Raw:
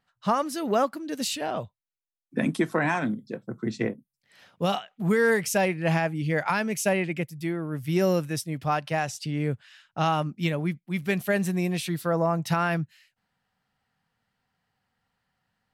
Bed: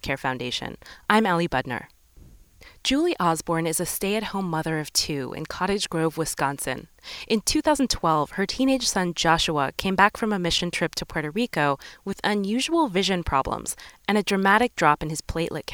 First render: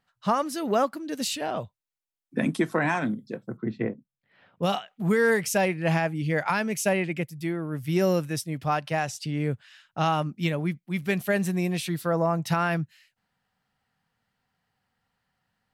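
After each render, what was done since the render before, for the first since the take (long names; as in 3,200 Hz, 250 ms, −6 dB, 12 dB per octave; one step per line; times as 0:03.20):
0:03.57–0:04.63: high-frequency loss of the air 420 metres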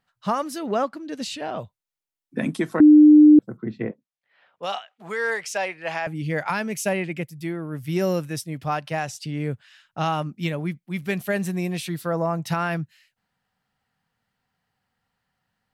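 0:00.58–0:01.59: high-frequency loss of the air 60 metres
0:02.80–0:03.39: beep over 301 Hz −7 dBFS
0:03.91–0:06.07: three-way crossover with the lows and the highs turned down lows −20 dB, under 480 Hz, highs −16 dB, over 7,900 Hz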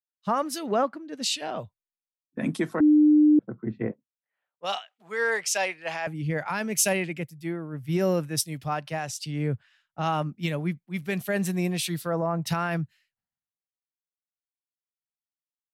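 brickwall limiter −17.5 dBFS, peak gain reduction 10.5 dB
multiband upward and downward expander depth 100%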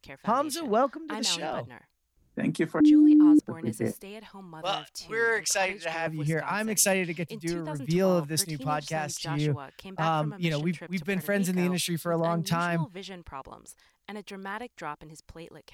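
mix in bed −18 dB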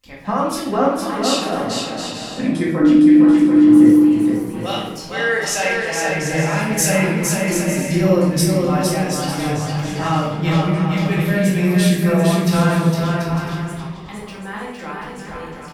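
on a send: bouncing-ball delay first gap 460 ms, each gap 0.6×, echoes 5
on the sum: rectangular room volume 220 cubic metres, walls mixed, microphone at 2.1 metres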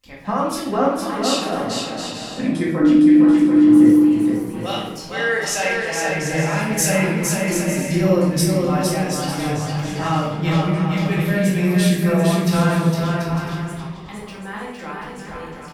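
level −1.5 dB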